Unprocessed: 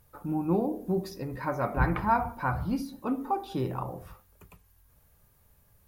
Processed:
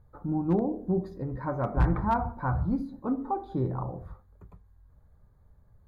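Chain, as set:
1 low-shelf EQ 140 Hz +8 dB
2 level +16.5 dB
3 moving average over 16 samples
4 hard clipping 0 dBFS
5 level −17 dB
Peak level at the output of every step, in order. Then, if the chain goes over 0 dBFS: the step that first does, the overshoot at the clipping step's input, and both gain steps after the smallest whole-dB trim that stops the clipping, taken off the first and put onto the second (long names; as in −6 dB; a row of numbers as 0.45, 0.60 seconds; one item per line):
−9.0, +7.5, +6.5, 0.0, −17.0 dBFS
step 2, 6.5 dB
step 2 +9.5 dB, step 5 −10 dB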